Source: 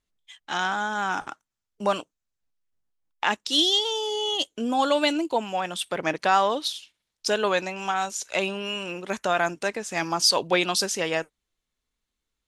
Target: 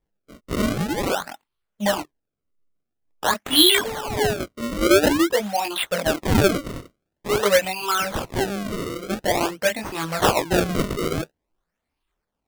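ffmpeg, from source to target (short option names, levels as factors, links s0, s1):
-af "afftfilt=real='re*pow(10,18/40*sin(2*PI*(0.63*log(max(b,1)*sr/1024/100)/log(2)-(1.9)*(pts-256)/sr)))':imag='im*pow(10,18/40*sin(2*PI*(0.63*log(max(b,1)*sr/1024/100)/log(2)-(1.9)*(pts-256)/sr)))':win_size=1024:overlap=0.75,flanger=delay=19.5:depth=6:speed=0.54,acrusher=samples=30:mix=1:aa=0.000001:lfo=1:lforange=48:lforate=0.48,volume=1.33"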